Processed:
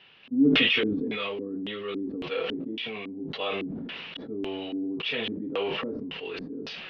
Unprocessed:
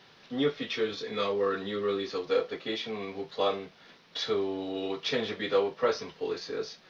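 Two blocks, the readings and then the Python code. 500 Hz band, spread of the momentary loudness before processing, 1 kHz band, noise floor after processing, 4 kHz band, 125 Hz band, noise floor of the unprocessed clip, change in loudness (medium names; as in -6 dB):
-3.5 dB, 8 LU, -3.5 dB, -43 dBFS, +5.5 dB, +4.5 dB, -58 dBFS, +2.5 dB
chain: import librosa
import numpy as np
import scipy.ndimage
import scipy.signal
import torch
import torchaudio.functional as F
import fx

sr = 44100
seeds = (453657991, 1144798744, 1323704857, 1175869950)

y = fx.filter_lfo_lowpass(x, sr, shape='square', hz=1.8, low_hz=270.0, high_hz=2800.0, q=6.5)
y = fx.sustainer(y, sr, db_per_s=20.0)
y = y * librosa.db_to_amplitude(-6.0)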